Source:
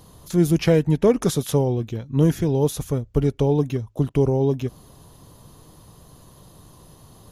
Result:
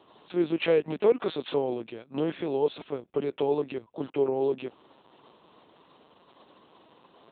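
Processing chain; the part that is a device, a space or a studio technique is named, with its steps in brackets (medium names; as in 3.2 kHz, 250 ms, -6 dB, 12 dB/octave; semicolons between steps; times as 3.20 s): talking toy (LPC vocoder at 8 kHz pitch kept; high-pass 370 Hz 12 dB/octave; peaking EQ 2.6 kHz +5 dB 0.23 oct); trim -2 dB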